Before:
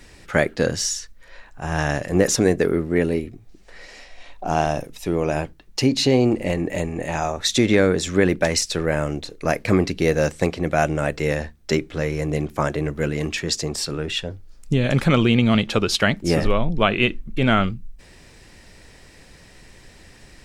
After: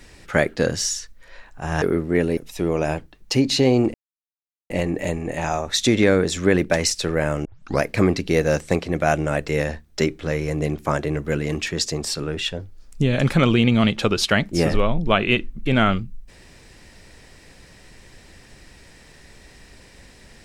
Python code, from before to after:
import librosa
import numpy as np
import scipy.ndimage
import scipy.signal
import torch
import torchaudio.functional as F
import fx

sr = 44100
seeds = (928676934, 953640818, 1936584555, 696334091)

y = fx.edit(x, sr, fx.cut(start_s=1.82, length_s=0.81),
    fx.cut(start_s=3.18, length_s=1.66),
    fx.insert_silence(at_s=6.41, length_s=0.76),
    fx.tape_start(start_s=9.16, length_s=0.37), tone=tone)